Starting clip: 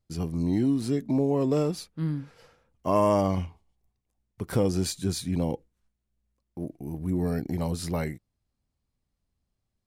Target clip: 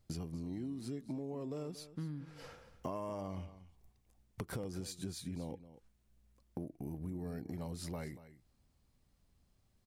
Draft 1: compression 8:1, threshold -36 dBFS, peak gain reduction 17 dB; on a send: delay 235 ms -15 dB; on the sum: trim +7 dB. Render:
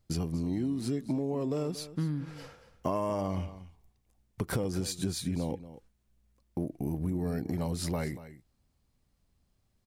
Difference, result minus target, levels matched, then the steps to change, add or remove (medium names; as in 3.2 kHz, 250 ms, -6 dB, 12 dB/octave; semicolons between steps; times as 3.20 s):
compression: peak gain reduction -10 dB
change: compression 8:1, threshold -47.5 dBFS, peak gain reduction 27 dB